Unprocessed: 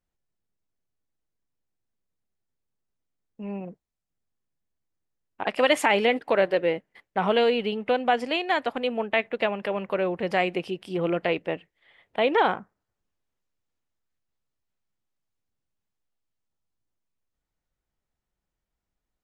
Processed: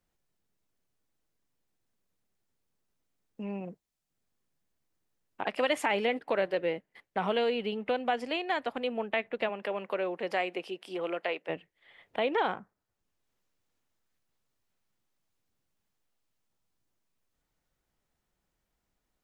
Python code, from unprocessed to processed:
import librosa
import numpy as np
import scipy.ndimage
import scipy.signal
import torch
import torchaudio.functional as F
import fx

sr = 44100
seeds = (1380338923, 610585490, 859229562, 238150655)

y = fx.highpass(x, sr, hz=fx.line((9.48, 230.0), (11.48, 540.0)), slope=12, at=(9.48, 11.48), fade=0.02)
y = fx.band_squash(y, sr, depth_pct=40)
y = y * 10.0 ** (-6.5 / 20.0)